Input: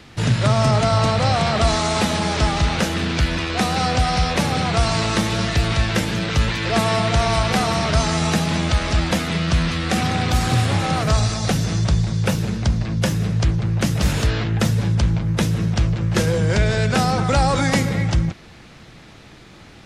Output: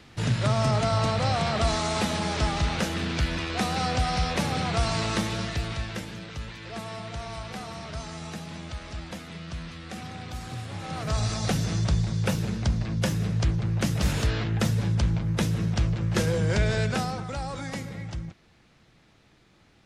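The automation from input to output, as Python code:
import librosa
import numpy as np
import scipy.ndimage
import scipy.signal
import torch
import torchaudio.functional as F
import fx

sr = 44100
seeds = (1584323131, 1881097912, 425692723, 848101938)

y = fx.gain(x, sr, db=fx.line((5.17, -7.0), (6.37, -18.0), (10.69, -18.0), (11.33, -6.0), (16.81, -6.0), (17.31, -16.0)))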